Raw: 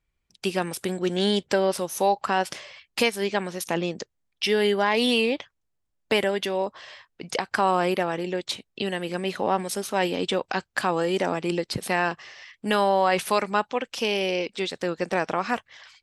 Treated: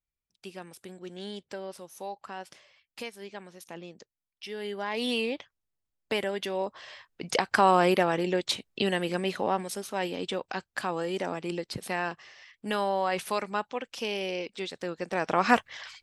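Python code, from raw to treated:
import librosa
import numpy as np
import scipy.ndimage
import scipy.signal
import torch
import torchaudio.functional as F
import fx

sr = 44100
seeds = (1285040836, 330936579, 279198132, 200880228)

y = fx.gain(x, sr, db=fx.line((4.49, -16.5), (5.11, -7.0), (6.25, -7.0), (7.36, 1.0), (8.98, 1.0), (9.84, -7.0), (15.1, -7.0), (15.5, 5.0)))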